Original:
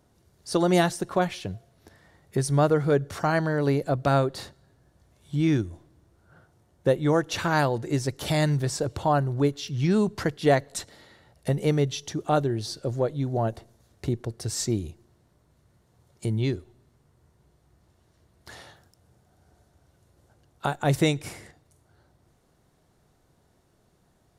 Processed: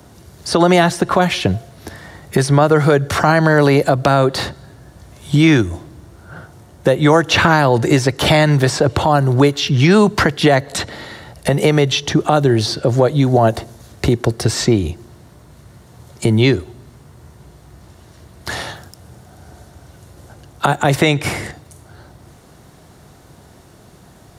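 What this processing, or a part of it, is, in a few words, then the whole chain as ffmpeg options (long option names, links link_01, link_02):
mastering chain: -filter_complex "[0:a]highpass=46,equalizer=frequency=460:width_type=o:width=0.77:gain=-2,acrossover=split=210|480|3700[link_01][link_02][link_03][link_04];[link_01]acompressor=threshold=-38dB:ratio=4[link_05];[link_02]acompressor=threshold=-37dB:ratio=4[link_06];[link_03]acompressor=threshold=-29dB:ratio=4[link_07];[link_04]acompressor=threshold=-51dB:ratio=4[link_08];[link_05][link_06][link_07][link_08]amix=inputs=4:normalize=0,acompressor=threshold=-27dB:ratio=2.5,alimiter=level_in=22dB:limit=-1dB:release=50:level=0:latency=1,volume=-1dB"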